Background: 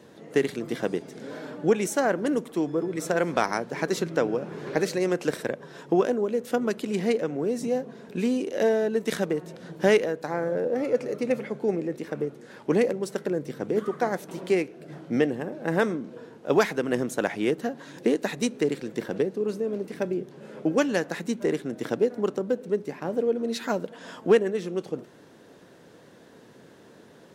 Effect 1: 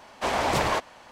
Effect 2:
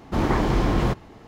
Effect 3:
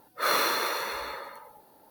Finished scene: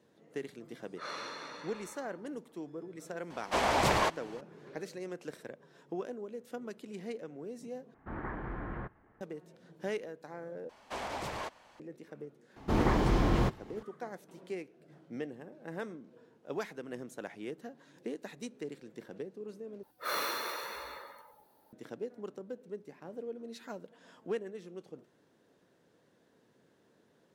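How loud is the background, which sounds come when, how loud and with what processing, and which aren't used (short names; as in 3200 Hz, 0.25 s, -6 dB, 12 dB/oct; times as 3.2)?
background -16.5 dB
0.79 add 3 -16 dB + LPF 7100 Hz 24 dB/oct
3.3 add 1 -3 dB
7.94 replace with 2 -9.5 dB + ladder low-pass 1900 Hz, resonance 55%
10.69 replace with 1 -10.5 dB + limiter -19 dBFS
12.56 add 2 -6 dB
19.83 replace with 3 -9 dB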